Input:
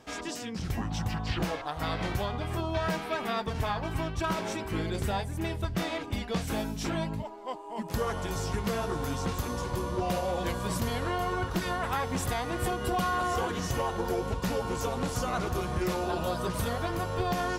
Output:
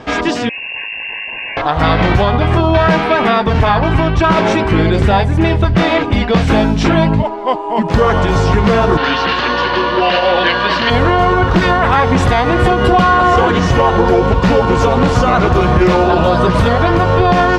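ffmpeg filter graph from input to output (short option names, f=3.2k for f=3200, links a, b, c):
-filter_complex "[0:a]asettb=1/sr,asplit=3[a][b][c];[a]atrim=end=0.494[d];[b]atrim=start=0.49:end=1.57,asetpts=PTS-STARTPTS,afade=t=in:d=0.004:c=qsin,afade=t=out:st=1.076:d=0.004:c=qsin,aeval=exprs='(tanh(178*val(0)+0.75)-tanh(0.75))/178':c=same,lowpass=f=2.4k:t=q:w=0.5098,lowpass=f=2.4k:t=q:w=0.6013,lowpass=f=2.4k:t=q:w=0.9,lowpass=f=2.4k:t=q:w=2.563,afreqshift=-2800,asuperstop=centerf=1300:order=20:qfactor=3.4[e];[c]atrim=start=1.566[f];[d][e]acrossfade=d=0.004:c1=hsin:c2=qsin[g];[g][f]acrossfade=d=0.004:c1=qsin:c2=hsin,asettb=1/sr,asplit=3[h][i][j];[h]atrim=end=8.974[k];[i]atrim=start=8.97:end=10.9,asetpts=PTS-STARTPTS,afade=t=in:d=0.004:c=qsin,afade=t=out:st=1.926:d=0.004:c=qsin,highpass=380,equalizer=f=470:t=q:w=4:g=-4,equalizer=f=740:t=q:w=4:g=-3,equalizer=f=1.7k:t=q:w=4:g=9,equalizer=f=2.9k:t=q:w=4:g=10,equalizer=f=4.3k:t=q:w=4:g=8,lowpass=f=5.2k:w=0.5412,lowpass=f=5.2k:w=1.3066,aeval=exprs='val(0)+0.00251*(sin(2*PI*60*n/s)+sin(2*PI*2*60*n/s)/2+sin(2*PI*3*60*n/s)/3+sin(2*PI*4*60*n/s)/4+sin(2*PI*5*60*n/s)/5)':c=same[l];[j]atrim=start=10.896[m];[k][l]acrossfade=d=0.004:c1=hsin:c2=qsin[n];[n][m]acrossfade=d=0.004:c1=qsin:c2=hsin,lowpass=3.3k,alimiter=level_in=24dB:limit=-1dB:release=50:level=0:latency=1,volume=-2dB"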